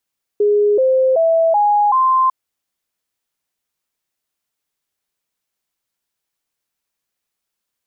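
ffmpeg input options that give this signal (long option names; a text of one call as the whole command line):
ffmpeg -f lavfi -i "aevalsrc='0.299*clip(min(mod(t,0.38),0.38-mod(t,0.38))/0.005,0,1)*sin(2*PI*414*pow(2,floor(t/0.38)/3)*mod(t,0.38))':duration=1.9:sample_rate=44100" out.wav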